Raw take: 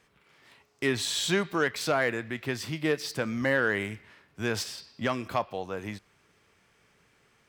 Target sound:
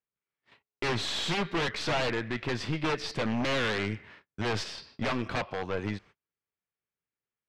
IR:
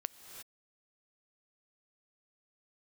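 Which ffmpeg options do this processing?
-af "agate=range=-36dB:threshold=-55dB:ratio=16:detection=peak,aeval=exprs='0.2*(cos(1*acos(clip(val(0)/0.2,-1,1)))-cos(1*PI/2))+0.02*(cos(8*acos(clip(val(0)/0.2,-1,1)))-cos(8*PI/2))':c=same,aeval=exprs='0.0596*(abs(mod(val(0)/0.0596+3,4)-2)-1)':c=same,lowpass=4.1k,volume=3.5dB"

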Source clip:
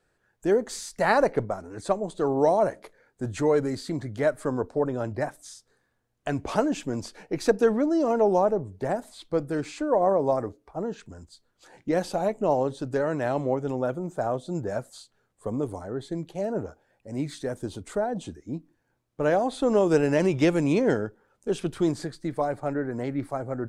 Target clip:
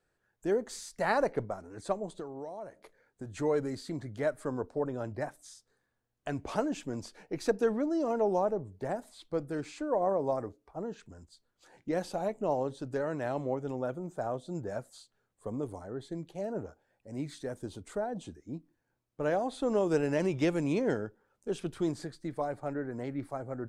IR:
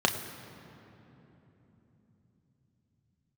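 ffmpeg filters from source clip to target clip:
-filter_complex "[0:a]asettb=1/sr,asplit=3[a][b][c];[a]atrim=end=2.154[d];[b]atrim=start=2.15:end=3.4,asetpts=PTS-STARTPTS,afade=t=in:d=0.004:c=qsin,afade=t=out:st=1.246:d=0.004:c=qsin,acompressor=threshold=-31dB:ratio=16[e];[c]atrim=start=3.396[f];[d][e]acrossfade=d=0.004:c1=hsin:c2=qsin[g];[g][f]acrossfade=d=0.004:c1=qsin:c2=hsin,volume=-7dB"

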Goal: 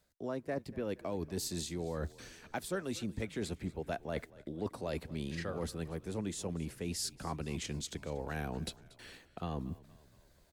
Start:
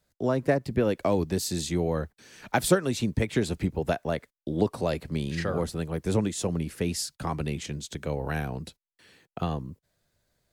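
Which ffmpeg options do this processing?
-filter_complex "[0:a]equalizer=f=130:t=o:w=0.34:g=-7,areverse,acompressor=threshold=-41dB:ratio=5,areverse,asplit=6[a][b][c][d][e][f];[b]adelay=235,afreqshift=-39,volume=-20dB[g];[c]adelay=470,afreqshift=-78,volume=-24.9dB[h];[d]adelay=705,afreqshift=-117,volume=-29.8dB[i];[e]adelay=940,afreqshift=-156,volume=-34.6dB[j];[f]adelay=1175,afreqshift=-195,volume=-39.5dB[k];[a][g][h][i][j][k]amix=inputs=6:normalize=0,volume=4.5dB"

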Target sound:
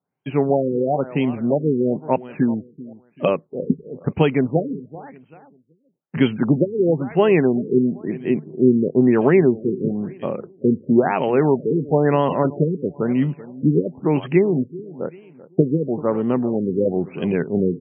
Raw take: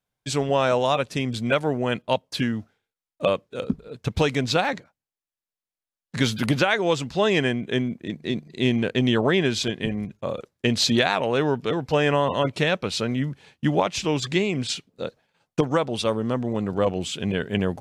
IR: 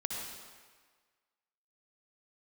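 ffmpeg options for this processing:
-af "highpass=130,equalizer=f=160:t=q:w=4:g=9,equalizer=f=260:t=q:w=4:g=6,equalizer=f=380:t=q:w=4:g=8,equalizer=f=820:t=q:w=4:g=4,equalizer=f=1.6k:t=q:w=4:g=-3,lowpass=f=4.3k:w=0.5412,lowpass=f=4.3k:w=1.3066,aecho=1:1:386|772|1158:0.126|0.0415|0.0137,afftfilt=real='re*lt(b*sr/1024,480*pow(3300/480,0.5+0.5*sin(2*PI*1*pts/sr)))':imag='im*lt(b*sr/1024,480*pow(3300/480,0.5+0.5*sin(2*PI*1*pts/sr)))':win_size=1024:overlap=0.75,volume=1dB"

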